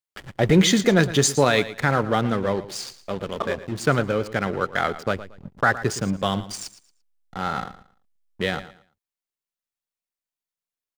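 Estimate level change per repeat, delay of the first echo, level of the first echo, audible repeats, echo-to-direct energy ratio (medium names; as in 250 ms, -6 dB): -12.0 dB, 114 ms, -15.0 dB, 2, -14.5 dB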